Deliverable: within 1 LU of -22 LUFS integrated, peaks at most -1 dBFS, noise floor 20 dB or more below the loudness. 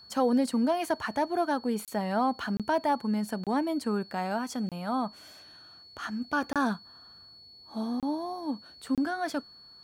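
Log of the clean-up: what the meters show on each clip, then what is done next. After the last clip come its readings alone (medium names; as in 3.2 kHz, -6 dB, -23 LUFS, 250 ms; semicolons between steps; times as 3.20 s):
dropouts 7; longest dropout 27 ms; steady tone 4.4 kHz; tone level -50 dBFS; loudness -30.5 LUFS; peak level -15.0 dBFS; loudness target -22.0 LUFS
-> interpolate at 1.85/2.57/3.44/4.69/6.53/8.00/8.95 s, 27 ms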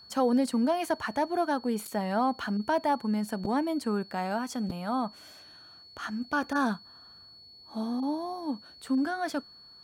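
dropouts 0; steady tone 4.4 kHz; tone level -50 dBFS
-> band-stop 4.4 kHz, Q 30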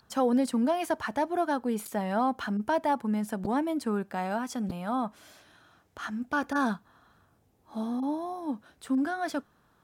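steady tone not found; loudness -30.5 LUFS; peak level -15.5 dBFS; loudness target -22.0 LUFS
-> trim +8.5 dB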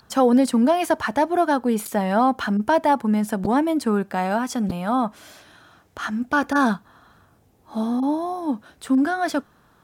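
loudness -22.0 LUFS; peak level -7.0 dBFS; noise floor -58 dBFS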